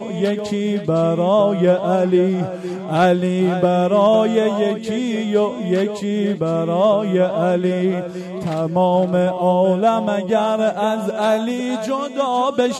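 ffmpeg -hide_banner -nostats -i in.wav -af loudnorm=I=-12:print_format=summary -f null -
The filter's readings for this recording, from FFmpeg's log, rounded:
Input Integrated:    -18.3 LUFS
Input True Peak:      -5.8 dBTP
Input LRA:             2.2 LU
Input Threshold:     -28.3 LUFS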